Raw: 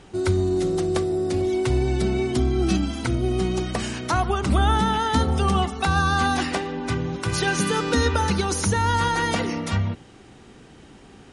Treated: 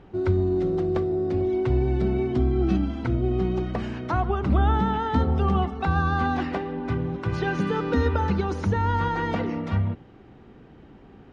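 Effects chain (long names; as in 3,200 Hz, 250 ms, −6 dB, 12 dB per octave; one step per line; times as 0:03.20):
head-to-tape spacing loss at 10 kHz 36 dB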